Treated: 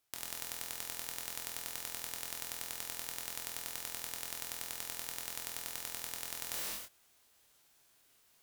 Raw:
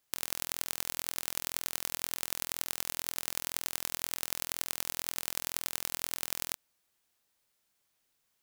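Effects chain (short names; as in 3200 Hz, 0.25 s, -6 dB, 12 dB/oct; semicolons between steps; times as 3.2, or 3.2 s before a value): non-linear reverb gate 0.35 s falling, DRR -1.5 dB; in parallel at +1.5 dB: limiter -15.5 dBFS, peak gain reduction 12 dB; on the sum: formant shift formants -4 st; added harmonics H 3 -15 dB, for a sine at -1 dBFS; reverse; compressor 5:1, threshold -42 dBFS, peak gain reduction 15 dB; reverse; gain +5.5 dB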